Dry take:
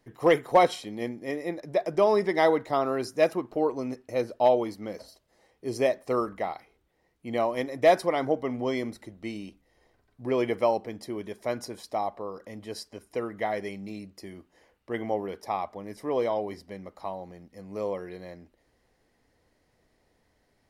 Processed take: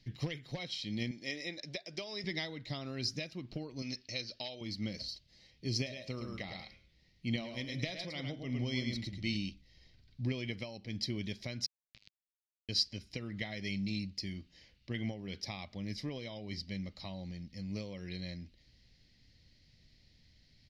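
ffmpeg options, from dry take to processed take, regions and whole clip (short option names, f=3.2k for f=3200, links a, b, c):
-filter_complex "[0:a]asettb=1/sr,asplit=3[a][b][c];[a]atrim=end=1.114[d];[b]atrim=start=1.11:end=2.24,asetpts=PTS-STARTPTS,afade=t=in:d=0.004:c=qsin,afade=t=out:st=1.126:d=0.004:c=qsin,lowpass=f=10k:w=0.5412,lowpass=f=10k:w=1.3066,bass=f=250:g=-15,treble=f=4k:g=4[e];[c]atrim=start=2.236[f];[d][e]acrossfade=d=0.004:c1=hsin:c2=qsin[g];[g][f]acrossfade=d=0.004:c1=qsin:c2=hsin,asettb=1/sr,asplit=3[h][i][j];[h]atrim=end=3.824[k];[i]atrim=start=3.82:end=4.61,asetpts=PTS-STARTPTS,afade=t=in:d=0.004:c=qsin,afade=t=out:st=0.786:d=0.004:c=qsin,lowpass=f=5.3k:t=q:w=2.3,lowshelf=f=340:g=-11[l];[j]atrim=start=4.606[m];[k][l]acrossfade=d=0.004:c1=hsin:c2=qsin[n];[n][m]acrossfade=d=0.004:c1=qsin:c2=hsin,asettb=1/sr,asplit=3[o][p][q];[o]atrim=end=5.754[r];[p]atrim=start=5.75:end=9.36,asetpts=PTS-STARTPTS,afade=t=in:d=0.004:c=qsin,afade=t=out:st=3.606:d=0.004:c=qsin,bandreject=f=107.6:t=h:w=4,bandreject=f=215.2:t=h:w=4,bandreject=f=322.8:t=h:w=4,bandreject=f=430.4:t=h:w=4,bandreject=f=538:t=h:w=4,bandreject=f=645.6:t=h:w=4,bandreject=f=753.2:t=h:w=4,bandreject=f=860.8:t=h:w=4,bandreject=f=968.4:t=h:w=4,bandreject=f=1.076k:t=h:w=4,bandreject=f=1.1836k:t=h:w=4,bandreject=f=1.2912k:t=h:w=4,bandreject=f=1.3988k:t=h:w=4,bandreject=f=1.5064k:t=h:w=4,bandreject=f=1.614k:t=h:w=4,bandreject=f=1.7216k:t=h:w=4,bandreject=f=1.8292k:t=h:w=4,bandreject=f=1.9368k:t=h:w=4,bandreject=f=2.0444k:t=h:w=4,bandreject=f=2.152k:t=h:w=4,bandreject=f=2.2596k:t=h:w=4,bandreject=f=2.3672k:t=h:w=4,bandreject=f=2.4748k:t=h:w=4,bandreject=f=2.5824k:t=h:w=4,bandreject=f=2.69k:t=h:w=4,bandreject=f=2.7976k:t=h:w=4,bandreject=f=2.9052k:t=h:w=4,bandreject=f=3.0128k:t=h:w=4,bandreject=f=3.1204k:t=h:w=4,bandreject=f=3.228k:t=h:w=4,bandreject=f=3.3356k:t=h:w=4,bandreject=f=3.4432k:t=h:w=4,bandreject=f=3.5508k:t=h:w=4,bandreject=f=3.6584k:t=h:w=4,aecho=1:1:108:0.473,atrim=end_sample=159201[s];[q]atrim=start=9.356[t];[r][s]acrossfade=d=0.004:c1=hsin:c2=qsin[u];[u][t]acrossfade=d=0.004:c1=qsin:c2=hsin,asettb=1/sr,asplit=3[v][w][x];[v]atrim=end=11.664[y];[w]atrim=start=11.66:end=12.69,asetpts=PTS-STARTPTS,afade=t=in:d=0.004:c=qsin,afade=t=out:st=1.026:d=0.004:c=qsin,acrusher=bits=2:mix=0:aa=0.5,acompressor=threshold=-58dB:ratio=8:attack=3.2:release=140:knee=1:detection=peak[z];[x]atrim=start=12.686[aa];[y][z]acrossfade=d=0.004:c1=hsin:c2=qsin[ab];[ab][aa]acrossfade=d=0.004:c1=qsin:c2=hsin,equalizer=f=550:t=o:w=0.7:g=10,acompressor=threshold=-26dB:ratio=8,firequalizer=gain_entry='entry(140,0);entry(470,-28);entry(1100,-24);entry(2200,-4);entry(4500,6);entry(8800,-21)':delay=0.05:min_phase=1,volume=8dB"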